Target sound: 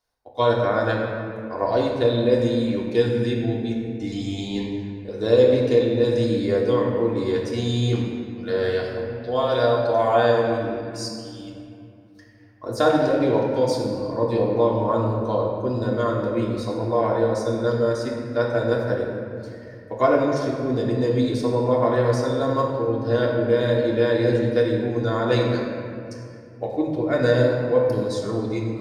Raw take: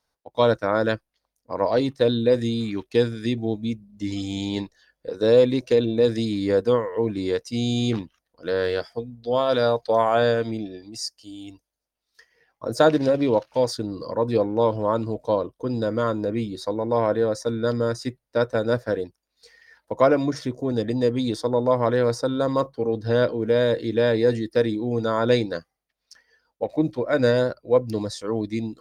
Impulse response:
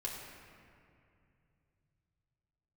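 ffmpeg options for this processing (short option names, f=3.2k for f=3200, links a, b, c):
-filter_complex "[0:a]asettb=1/sr,asplit=3[a][b][c];[a]atrim=end=25.534[d];[b]atrim=start=25.53:end=26.67,asetpts=PTS-STARTPTS,afade=t=in:d=0.004:c=qsin,afade=t=out:st=1.136:d=0.004:c=qsin,equalizer=f=7.7k:w=0.92:g=7[e];[c]atrim=start=26.666[f];[d][e]acrossfade=d=0.004:c1=hsin:c2=qsin[g];[g][f]acrossfade=d=0.004:c1=qsin:c2=hsin[h];[1:a]atrim=start_sample=2205[i];[h][i]afir=irnorm=-1:irlink=0"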